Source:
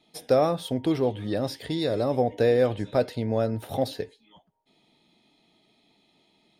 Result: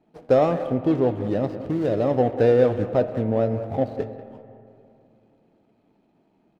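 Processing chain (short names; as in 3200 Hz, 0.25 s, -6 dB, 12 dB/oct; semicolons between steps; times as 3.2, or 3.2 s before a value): median filter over 25 samples; LPF 2100 Hz 6 dB/oct, from 2.94 s 1300 Hz, from 3.95 s 2500 Hz; speakerphone echo 0.19 s, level -13 dB; reverb RT60 2.7 s, pre-delay 5 ms, DRR 11.5 dB; gain +4 dB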